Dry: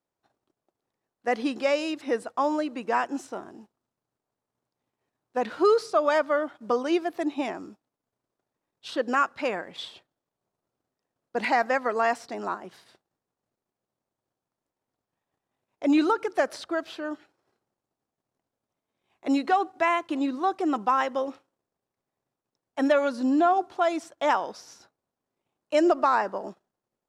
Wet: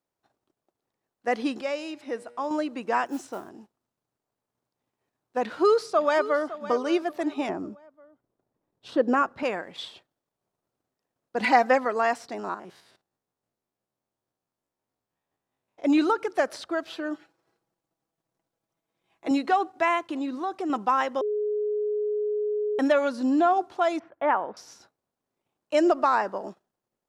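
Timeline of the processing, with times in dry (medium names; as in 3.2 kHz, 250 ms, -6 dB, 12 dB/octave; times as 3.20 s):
1.61–2.51 s: feedback comb 120 Hz, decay 2 s, mix 50%
3.06–3.49 s: modulation noise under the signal 23 dB
5.42–6.52 s: echo throw 560 ms, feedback 35%, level -14.5 dB
7.49–9.43 s: tilt shelf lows +7.5 dB, about 1.1 kHz
11.40–11.85 s: comb 4 ms, depth 97%
12.39–15.85 s: spectrogram pixelated in time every 50 ms
16.90–19.31 s: comb 6.1 ms, depth 52%
20.02–20.70 s: compression 2:1, threshold -29 dBFS
21.21–22.79 s: bleep 420 Hz -24 dBFS
23.99–24.57 s: low-pass 2.2 kHz 24 dB/octave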